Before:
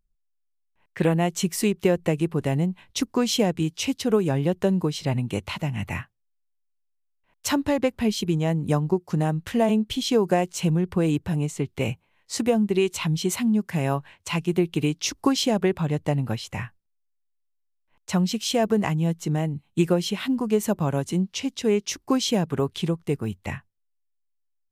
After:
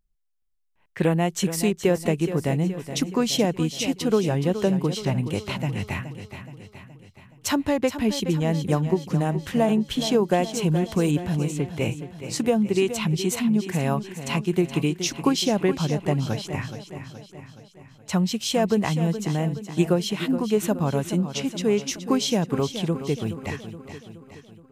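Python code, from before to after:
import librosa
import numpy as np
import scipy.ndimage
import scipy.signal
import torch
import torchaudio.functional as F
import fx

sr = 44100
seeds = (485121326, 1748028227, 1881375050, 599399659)

p1 = fx.high_shelf(x, sr, hz=5000.0, db=10.5, at=(10.7, 11.11))
y = p1 + fx.echo_feedback(p1, sr, ms=422, feedback_pct=54, wet_db=-11, dry=0)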